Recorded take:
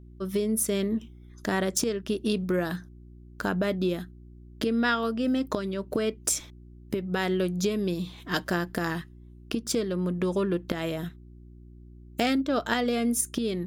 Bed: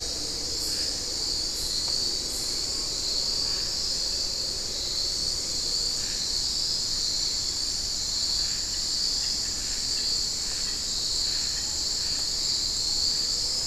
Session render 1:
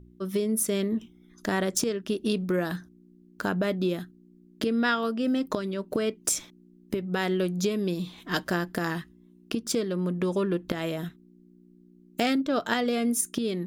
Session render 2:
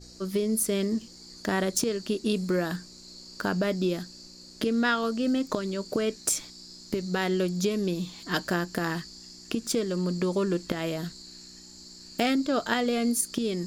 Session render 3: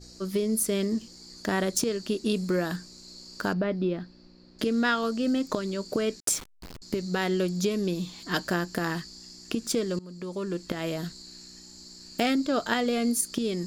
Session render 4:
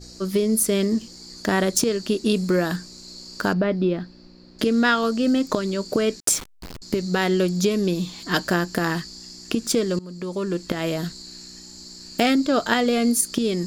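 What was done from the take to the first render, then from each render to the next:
de-hum 60 Hz, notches 2
add bed -20 dB
3.53–4.59 air absorption 350 m; 6.2–6.82 level-crossing sampler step -35 dBFS; 9.99–10.93 fade in, from -20.5 dB
gain +6 dB

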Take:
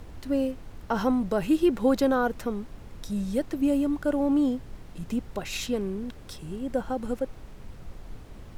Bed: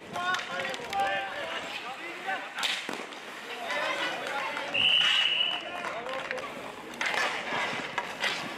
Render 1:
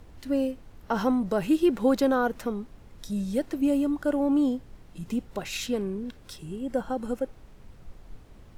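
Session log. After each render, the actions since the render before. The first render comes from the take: noise print and reduce 6 dB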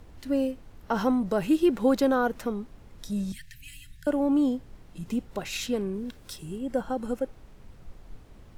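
3.32–4.07 Chebyshev band-stop 170–1700 Hz, order 5; 5.94–6.58 high shelf 5900 Hz +6 dB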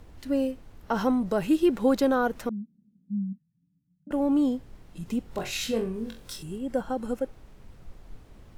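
2.49–4.11 Butterworth band-pass 200 Hz, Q 3.4; 5.23–6.43 flutter echo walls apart 3.8 m, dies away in 0.27 s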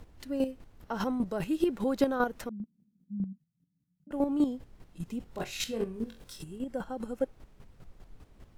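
chopper 5 Hz, depth 60%, duty 20%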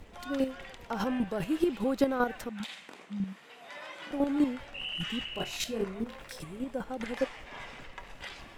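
add bed -14 dB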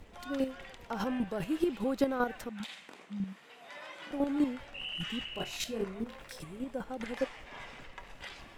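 gain -2.5 dB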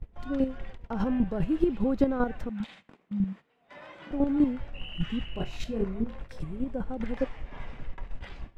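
gate -49 dBFS, range -16 dB; RIAA curve playback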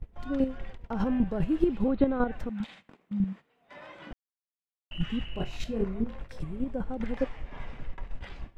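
1.88–2.32 steep low-pass 4300 Hz 96 dB/oct; 4.13–4.91 mute

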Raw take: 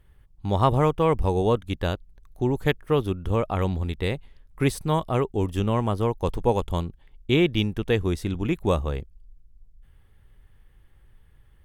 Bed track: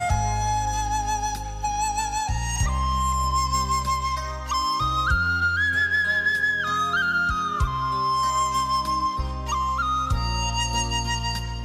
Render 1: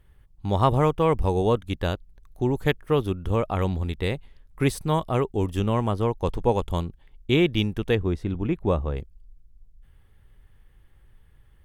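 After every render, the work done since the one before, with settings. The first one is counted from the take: 5.91–6.62 high shelf 10000 Hz -8 dB; 7.95–8.97 LPF 1400 Hz 6 dB/oct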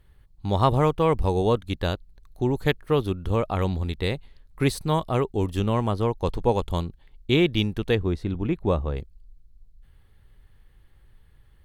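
bell 4200 Hz +8.5 dB 0.27 oct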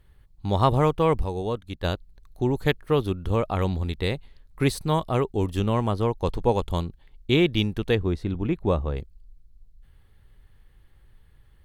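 1.24–1.84 gain -6.5 dB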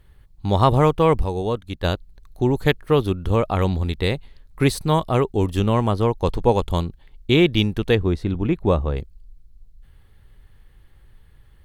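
gain +4.5 dB; limiter -3 dBFS, peak gain reduction 1 dB

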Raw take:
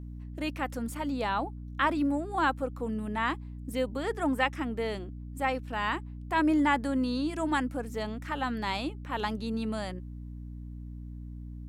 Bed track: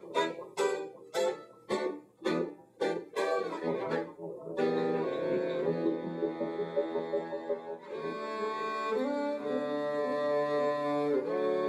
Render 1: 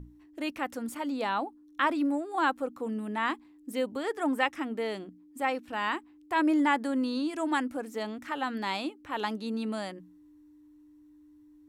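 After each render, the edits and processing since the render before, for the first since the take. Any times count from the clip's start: notches 60/120/180/240 Hz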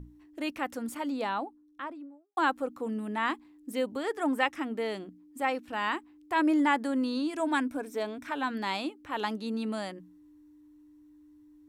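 1.01–2.37 studio fade out; 7.39–8.51 ripple EQ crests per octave 1.6, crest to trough 7 dB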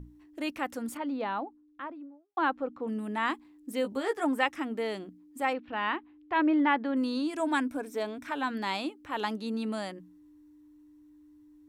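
0.97–2.88 air absorption 230 m; 3.83–4.25 doubler 15 ms -5.5 dB; 5.53–6.97 LPF 3600 Hz 24 dB/oct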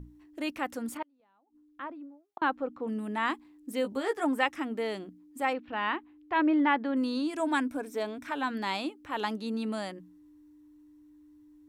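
1.02–2.42 flipped gate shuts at -28 dBFS, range -36 dB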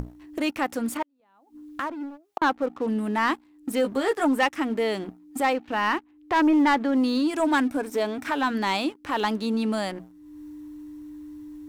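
sample leveller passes 2; upward compressor, threshold -25 dBFS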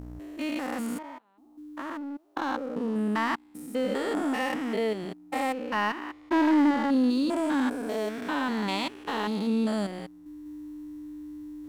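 stepped spectrum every 0.2 s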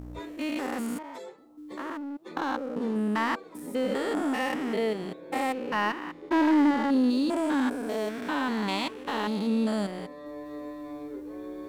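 add bed track -13 dB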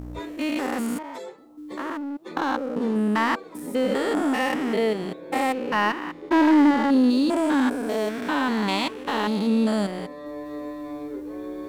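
gain +5 dB

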